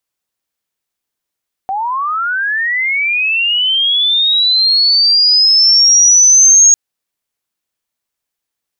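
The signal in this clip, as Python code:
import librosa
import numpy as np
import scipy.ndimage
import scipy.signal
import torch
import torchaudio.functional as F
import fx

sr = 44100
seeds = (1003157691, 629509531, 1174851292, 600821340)

y = fx.chirp(sr, length_s=5.05, from_hz=750.0, to_hz=6600.0, law='linear', from_db=-15.0, to_db=-3.0)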